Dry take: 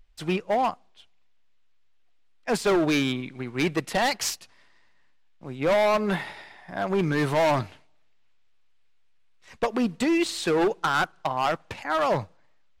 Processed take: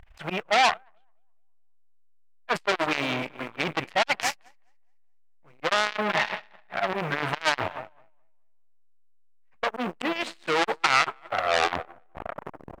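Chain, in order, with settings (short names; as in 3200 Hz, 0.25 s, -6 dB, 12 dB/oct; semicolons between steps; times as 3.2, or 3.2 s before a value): tape stop at the end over 1.97 s; high shelf 4200 Hz -10 dB; in parallel at -7.5 dB: short-mantissa float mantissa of 2-bit; on the sum: auto swell 0.141 s; limiter -26.5 dBFS, peak gain reduction 11.5 dB; band shelf 1300 Hz +10.5 dB 2.6 oct; feedback echo 0.211 s, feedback 59%, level -13 dB; core saturation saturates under 3500 Hz; gain +7.5 dB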